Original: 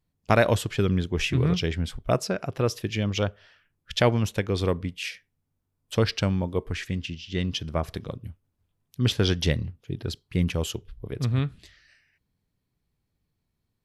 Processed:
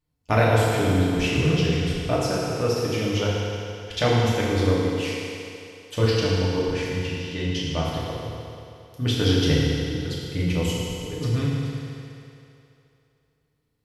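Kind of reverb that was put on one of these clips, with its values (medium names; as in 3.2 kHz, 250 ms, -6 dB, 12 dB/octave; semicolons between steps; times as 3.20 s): FDN reverb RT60 2.8 s, low-frequency decay 0.75×, high-frequency decay 0.9×, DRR -7 dB; trim -4.5 dB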